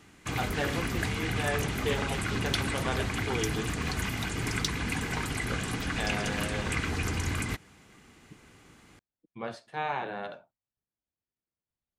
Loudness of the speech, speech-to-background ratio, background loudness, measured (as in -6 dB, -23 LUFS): -36.5 LUFS, -5.0 dB, -31.5 LUFS